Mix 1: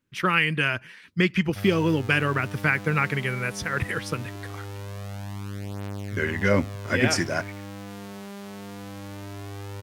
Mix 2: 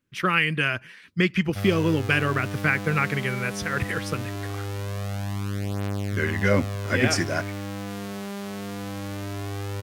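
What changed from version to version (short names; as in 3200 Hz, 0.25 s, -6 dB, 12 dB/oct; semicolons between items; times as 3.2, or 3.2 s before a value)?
background +5.5 dB; master: add notch 920 Hz, Q 15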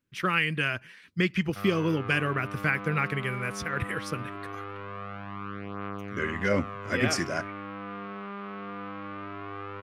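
speech -4.0 dB; background: add speaker cabinet 240–2400 Hz, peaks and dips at 250 Hz -8 dB, 360 Hz -5 dB, 580 Hz -8 dB, 830 Hz -6 dB, 1200 Hz +9 dB, 1800 Hz -5 dB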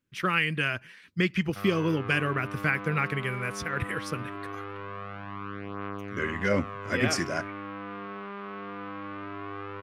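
reverb: on, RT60 0.35 s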